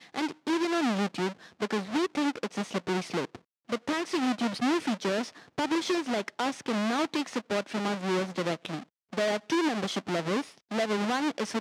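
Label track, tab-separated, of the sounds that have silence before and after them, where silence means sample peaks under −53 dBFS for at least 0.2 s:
3.680000	8.860000	sound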